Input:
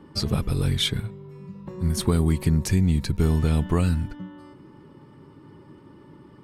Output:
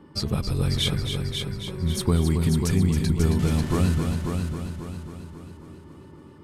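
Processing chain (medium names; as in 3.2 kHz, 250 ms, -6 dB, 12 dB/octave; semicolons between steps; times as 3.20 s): 3.39–3.95 s: one-bit delta coder 64 kbps, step -30.5 dBFS; on a send: multi-head delay 271 ms, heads first and second, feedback 51%, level -7.5 dB; on the sum: trim -1.5 dB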